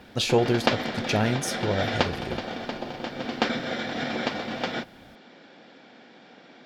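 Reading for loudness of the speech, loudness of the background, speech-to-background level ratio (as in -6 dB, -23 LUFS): -27.0 LUFS, -30.0 LUFS, 3.0 dB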